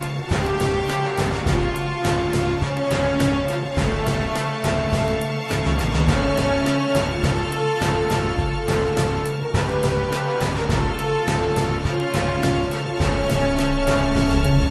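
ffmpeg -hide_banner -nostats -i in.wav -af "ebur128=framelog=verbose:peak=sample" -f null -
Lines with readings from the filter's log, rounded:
Integrated loudness:
  I:         -21.3 LUFS
  Threshold: -31.3 LUFS
Loudness range:
  LRA:         1.2 LU
  Threshold: -41.4 LUFS
  LRA low:   -21.9 LUFS
  LRA high:  -20.7 LUFS
Sample peak:
  Peak:       -6.6 dBFS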